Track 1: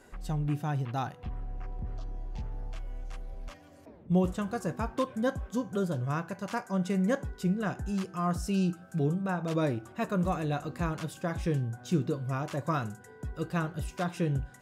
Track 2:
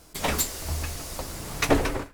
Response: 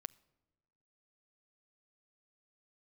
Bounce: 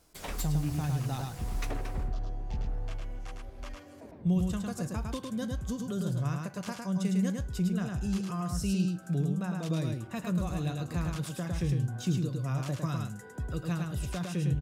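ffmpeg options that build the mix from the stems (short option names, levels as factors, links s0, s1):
-filter_complex "[0:a]acrossover=split=200|3000[s0][s1][s2];[s1]acompressor=threshold=0.00794:ratio=5[s3];[s0][s3][s2]amix=inputs=3:normalize=0,adelay=150,volume=1.26,asplit=2[s4][s5];[s5]volume=0.668[s6];[1:a]alimiter=limit=0.178:level=0:latency=1:release=412,volume=0.251[s7];[s6]aecho=0:1:106:1[s8];[s4][s7][s8]amix=inputs=3:normalize=0"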